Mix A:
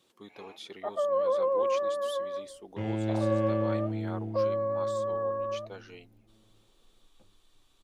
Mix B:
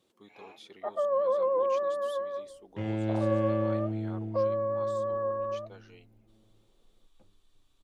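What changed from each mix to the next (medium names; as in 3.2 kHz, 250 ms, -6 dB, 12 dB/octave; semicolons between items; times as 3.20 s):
speech -6.5 dB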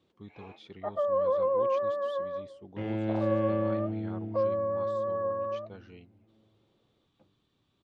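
speech: remove high-pass 400 Hz 12 dB/octave; master: add band-pass 100–4000 Hz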